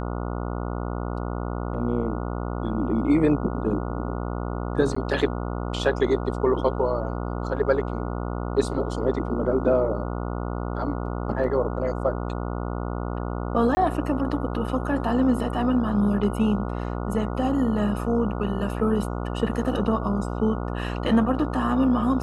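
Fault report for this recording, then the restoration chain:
mains buzz 60 Hz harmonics 24 −29 dBFS
0:04.95–0:04.96: drop-out 14 ms
0:13.75–0:13.77: drop-out 20 ms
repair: hum removal 60 Hz, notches 24
repair the gap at 0:04.95, 14 ms
repair the gap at 0:13.75, 20 ms

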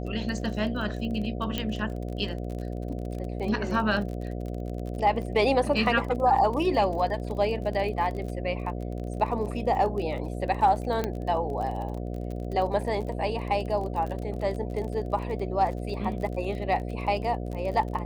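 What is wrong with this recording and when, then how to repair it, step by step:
mains buzz 60 Hz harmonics 12 −33 dBFS
surface crackle 33 per second −34 dBFS
0:01.58: click −14 dBFS
0:11.04: click −14 dBFS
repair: click removal
hum removal 60 Hz, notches 12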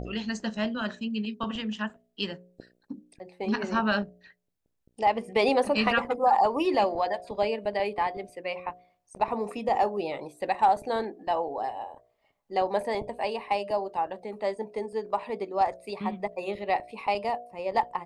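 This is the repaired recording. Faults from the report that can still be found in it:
none of them is left

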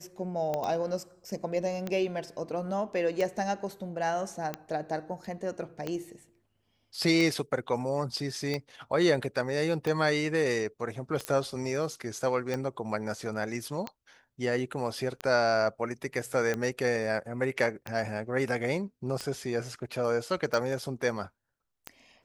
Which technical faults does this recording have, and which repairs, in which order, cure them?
scratch tick 45 rpm −18 dBFS
0:00.64: click −21 dBFS
0:11.25: click −16 dBFS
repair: click removal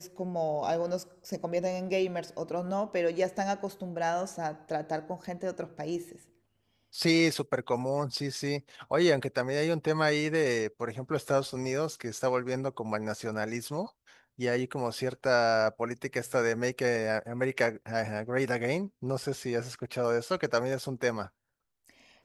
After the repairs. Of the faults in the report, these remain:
0:11.25: click

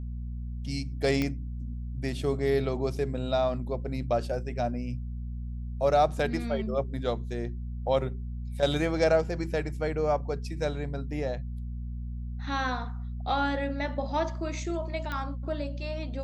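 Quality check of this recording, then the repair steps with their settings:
mains hum 60 Hz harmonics 4 −35 dBFS
0:01.22: click −15 dBFS
0:15.12: click −20 dBFS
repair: click removal
hum removal 60 Hz, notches 4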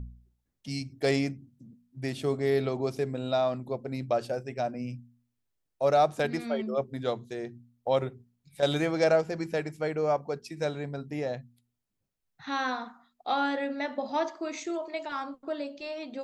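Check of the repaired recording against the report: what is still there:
none of them is left

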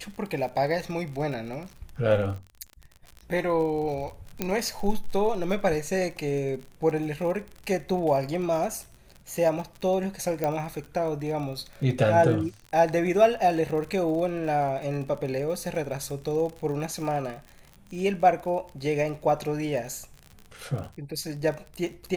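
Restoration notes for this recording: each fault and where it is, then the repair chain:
surface crackle 45 per second −34 dBFS
0:04.42: click −11 dBFS
0:10.44: click −14 dBFS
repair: click removal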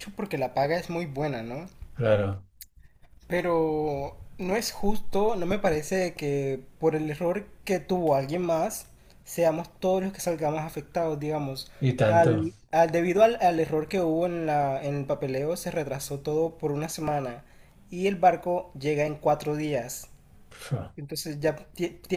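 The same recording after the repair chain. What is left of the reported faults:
0:04.42: click

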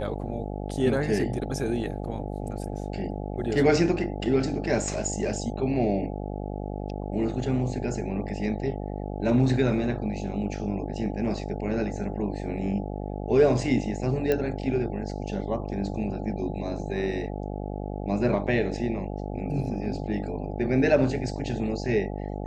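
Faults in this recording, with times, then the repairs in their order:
mains buzz 50 Hz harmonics 17 −33 dBFS
0:14.32: click −13 dBFS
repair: click removal
hum removal 50 Hz, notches 17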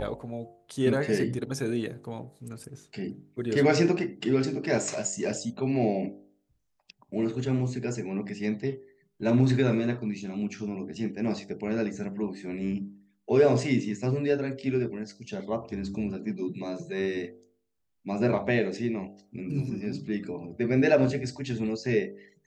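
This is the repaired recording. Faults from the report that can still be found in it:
none of them is left

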